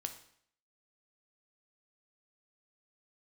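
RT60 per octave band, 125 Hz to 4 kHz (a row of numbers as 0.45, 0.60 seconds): 0.60, 0.60, 0.65, 0.60, 0.60, 0.60 seconds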